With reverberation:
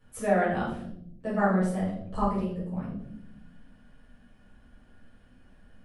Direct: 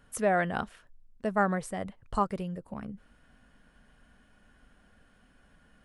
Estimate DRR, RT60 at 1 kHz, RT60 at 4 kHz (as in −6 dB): −9.5 dB, 0.55 s, 0.50 s